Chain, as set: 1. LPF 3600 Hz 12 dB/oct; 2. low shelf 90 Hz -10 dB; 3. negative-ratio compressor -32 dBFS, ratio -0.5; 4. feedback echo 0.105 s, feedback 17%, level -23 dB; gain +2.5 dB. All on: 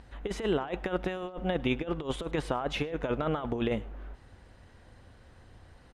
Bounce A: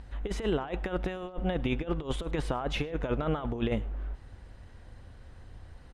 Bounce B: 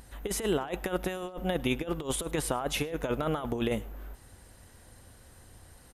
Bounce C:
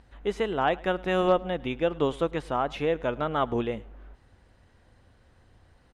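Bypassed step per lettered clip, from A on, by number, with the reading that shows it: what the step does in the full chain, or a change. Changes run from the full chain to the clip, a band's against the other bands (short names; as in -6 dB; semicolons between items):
2, 125 Hz band +4.0 dB; 1, 8 kHz band +15.5 dB; 3, 1 kHz band +6.5 dB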